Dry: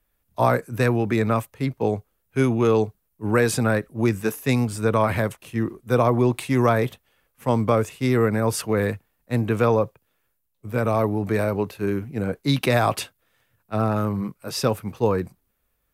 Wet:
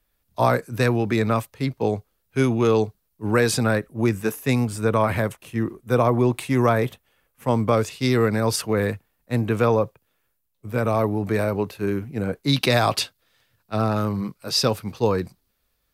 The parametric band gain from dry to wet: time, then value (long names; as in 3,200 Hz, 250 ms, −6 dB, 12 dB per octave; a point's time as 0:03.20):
parametric band 4,500 Hz 0.94 octaves
+6 dB
from 0:03.76 −0.5 dB
from 0:07.73 +11 dB
from 0:08.56 +2 dB
from 0:12.53 +10 dB